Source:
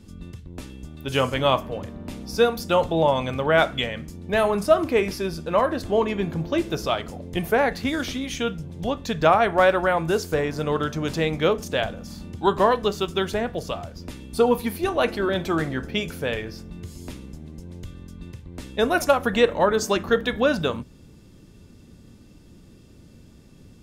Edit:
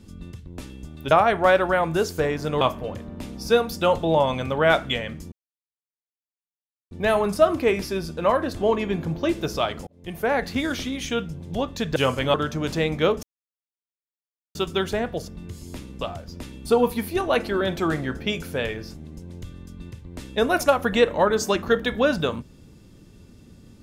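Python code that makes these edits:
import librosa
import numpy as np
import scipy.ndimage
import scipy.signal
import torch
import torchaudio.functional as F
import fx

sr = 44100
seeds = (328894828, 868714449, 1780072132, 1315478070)

y = fx.edit(x, sr, fx.swap(start_s=1.11, length_s=0.38, other_s=9.25, other_length_s=1.5),
    fx.insert_silence(at_s=4.2, length_s=1.59),
    fx.fade_in_span(start_s=7.16, length_s=0.58),
    fx.silence(start_s=11.64, length_s=1.32),
    fx.move(start_s=16.62, length_s=0.73, to_s=13.69), tone=tone)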